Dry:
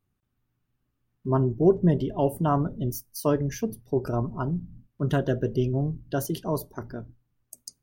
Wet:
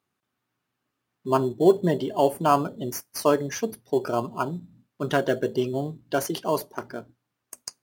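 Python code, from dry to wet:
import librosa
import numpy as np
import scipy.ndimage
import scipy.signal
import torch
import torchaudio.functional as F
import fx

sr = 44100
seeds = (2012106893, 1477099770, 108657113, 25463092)

p1 = fx.weighting(x, sr, curve='A')
p2 = fx.sample_hold(p1, sr, seeds[0], rate_hz=3800.0, jitter_pct=0)
p3 = p1 + (p2 * librosa.db_to_amplitude(-12.0))
y = p3 * librosa.db_to_amplitude(5.5)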